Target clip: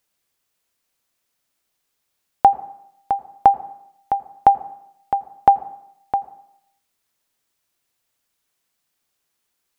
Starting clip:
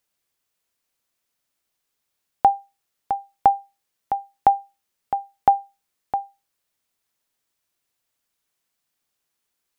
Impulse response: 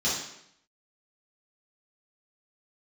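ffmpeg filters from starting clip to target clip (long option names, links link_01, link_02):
-filter_complex "[0:a]asplit=2[link_01][link_02];[1:a]atrim=start_sample=2205,lowpass=2100,adelay=81[link_03];[link_02][link_03]afir=irnorm=-1:irlink=0,volume=-28dB[link_04];[link_01][link_04]amix=inputs=2:normalize=0,volume=3.5dB"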